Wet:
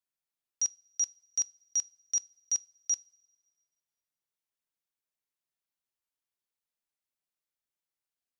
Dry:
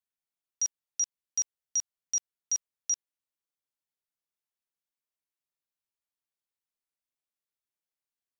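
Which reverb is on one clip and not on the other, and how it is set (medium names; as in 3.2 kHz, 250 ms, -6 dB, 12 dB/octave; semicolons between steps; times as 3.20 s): two-slope reverb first 0.29 s, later 1.7 s, from -18 dB, DRR 17 dB; trim -1 dB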